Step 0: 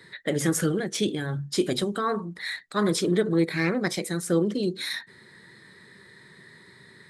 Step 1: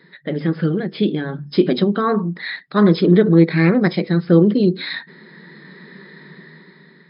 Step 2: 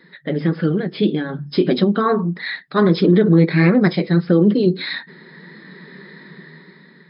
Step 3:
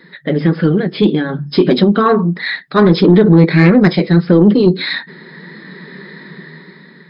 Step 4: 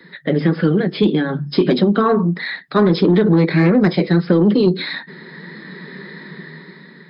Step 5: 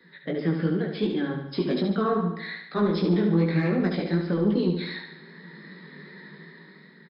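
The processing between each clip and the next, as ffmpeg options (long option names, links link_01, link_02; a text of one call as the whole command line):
ffmpeg -i in.wav -af "afftfilt=real='re*between(b*sr/4096,140,5200)':imag='im*between(b*sr/4096,140,5200)':win_size=4096:overlap=0.75,aemphasis=mode=reproduction:type=bsi,dynaudnorm=framelen=320:gausssize=7:maxgain=11.5dB" out.wav
ffmpeg -i in.wav -af "flanger=delay=3.5:depth=4:regen=-54:speed=1.6:shape=sinusoidal,alimiter=level_in=8.5dB:limit=-1dB:release=50:level=0:latency=1,volume=-3.5dB" out.wav
ffmpeg -i in.wav -af "asoftclip=type=tanh:threshold=-6dB,volume=6.5dB" out.wav
ffmpeg -i in.wav -filter_complex "[0:a]acrossover=split=98|220|1100[link_01][link_02][link_03][link_04];[link_01]acompressor=threshold=-39dB:ratio=4[link_05];[link_02]acompressor=threshold=-17dB:ratio=4[link_06];[link_03]acompressor=threshold=-12dB:ratio=4[link_07];[link_04]acompressor=threshold=-24dB:ratio=4[link_08];[link_05][link_06][link_07][link_08]amix=inputs=4:normalize=0,volume=-1dB" out.wav
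ffmpeg -i in.wav -filter_complex "[0:a]flanger=delay=16:depth=3.9:speed=2.6,asplit=2[link_01][link_02];[link_02]aecho=0:1:72|144|216|288|360|432|504:0.473|0.256|0.138|0.0745|0.0402|0.0217|0.0117[link_03];[link_01][link_03]amix=inputs=2:normalize=0,volume=-8.5dB" out.wav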